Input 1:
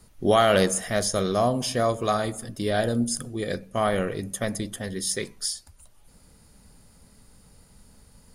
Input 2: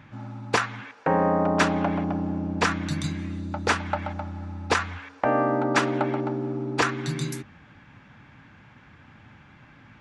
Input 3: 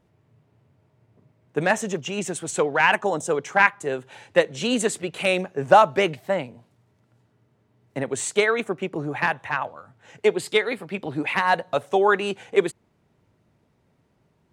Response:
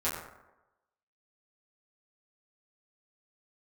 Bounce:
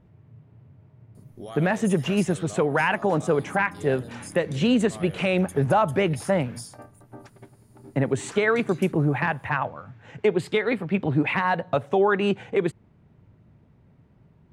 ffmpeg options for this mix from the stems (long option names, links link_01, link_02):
-filter_complex "[0:a]adelay=1150,volume=-13dB[link_01];[1:a]alimiter=limit=-20.5dB:level=0:latency=1,adelay=1500,volume=-11dB[link_02];[2:a]bass=frequency=250:gain=10,treble=frequency=4000:gain=-12,asoftclip=type=hard:threshold=-3dB,volume=2dB,asplit=2[link_03][link_04];[link_04]apad=whole_len=507251[link_05];[link_02][link_05]sidechaingate=range=-33dB:threshold=-50dB:ratio=16:detection=peak[link_06];[link_01][link_06]amix=inputs=2:normalize=0,highshelf=frequency=9300:gain=11,acompressor=threshold=-37dB:ratio=4,volume=0dB[link_07];[link_03][link_07]amix=inputs=2:normalize=0,alimiter=limit=-11.5dB:level=0:latency=1:release=105"